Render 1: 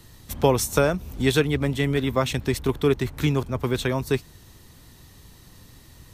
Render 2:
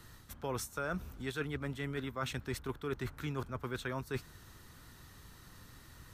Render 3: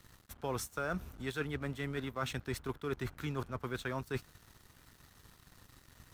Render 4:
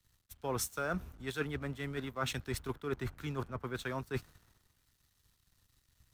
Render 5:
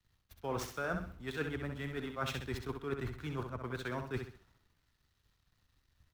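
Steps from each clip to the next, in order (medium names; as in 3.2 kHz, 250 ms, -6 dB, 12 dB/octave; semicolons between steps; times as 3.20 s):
peaking EQ 1.4 kHz +11 dB 0.69 oct; reverse; compression 6:1, threshold -28 dBFS, peak gain reduction 17 dB; reverse; trim -7 dB
peaking EQ 730 Hz +2.5 dB 0.27 oct; crossover distortion -57 dBFS; trim +1 dB
three bands expanded up and down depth 70%
median filter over 5 samples; vibrato 3.8 Hz 42 cents; on a send: feedback delay 65 ms, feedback 35%, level -6.5 dB; on the sum: trim -1.5 dB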